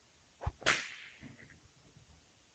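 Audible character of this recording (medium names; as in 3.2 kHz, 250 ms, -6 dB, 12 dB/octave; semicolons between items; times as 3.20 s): tremolo triangle 1 Hz, depth 35%; a quantiser's noise floor 10-bit, dither triangular; Speex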